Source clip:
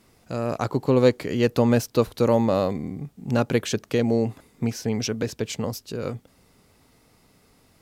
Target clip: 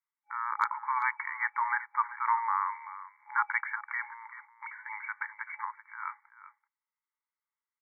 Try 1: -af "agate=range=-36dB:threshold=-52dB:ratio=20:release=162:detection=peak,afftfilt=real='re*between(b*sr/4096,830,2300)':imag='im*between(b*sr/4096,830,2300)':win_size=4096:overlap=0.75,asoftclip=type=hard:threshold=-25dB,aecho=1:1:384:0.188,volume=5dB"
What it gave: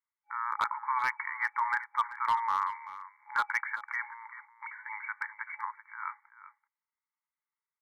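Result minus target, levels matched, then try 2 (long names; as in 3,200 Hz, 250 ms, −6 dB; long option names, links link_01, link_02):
hard clipping: distortion +18 dB
-af "agate=range=-36dB:threshold=-52dB:ratio=20:release=162:detection=peak,afftfilt=real='re*between(b*sr/4096,830,2300)':imag='im*between(b*sr/4096,830,2300)':win_size=4096:overlap=0.75,asoftclip=type=hard:threshold=-19dB,aecho=1:1:384:0.188,volume=5dB"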